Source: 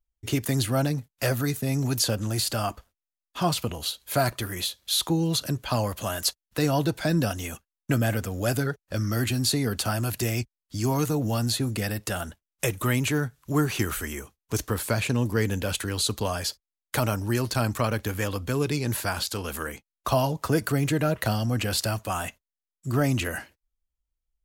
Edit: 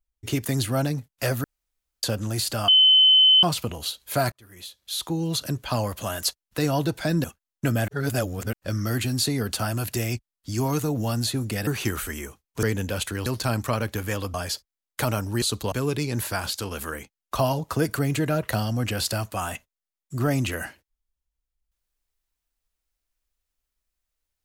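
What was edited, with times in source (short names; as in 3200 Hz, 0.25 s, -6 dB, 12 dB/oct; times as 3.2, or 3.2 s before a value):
1.44–2.03 room tone
2.68–3.43 bleep 3050 Hz -12 dBFS
4.32–5.47 fade in
7.24–7.5 cut
8.14–8.79 reverse
11.93–13.61 cut
14.57–15.36 cut
15.99–16.29 swap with 17.37–18.45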